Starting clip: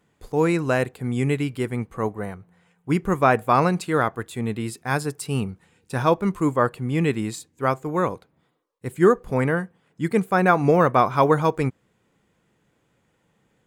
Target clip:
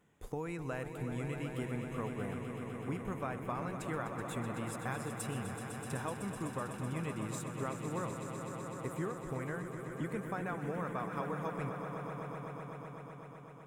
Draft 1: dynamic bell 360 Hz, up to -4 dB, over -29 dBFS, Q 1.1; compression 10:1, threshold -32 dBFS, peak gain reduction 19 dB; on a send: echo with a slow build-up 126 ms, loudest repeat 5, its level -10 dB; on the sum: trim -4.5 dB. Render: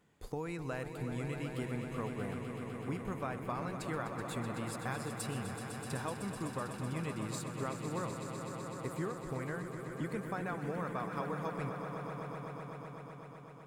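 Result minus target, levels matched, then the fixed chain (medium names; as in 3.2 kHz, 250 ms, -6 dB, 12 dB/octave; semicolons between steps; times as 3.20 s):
4 kHz band +3.0 dB
dynamic bell 360 Hz, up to -4 dB, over -29 dBFS, Q 1.1; compression 10:1, threshold -32 dBFS, peak gain reduction 19 dB; peaking EQ 4.5 kHz -12.5 dB 0.3 oct; on a send: echo with a slow build-up 126 ms, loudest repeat 5, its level -10 dB; on the sum: trim -4.5 dB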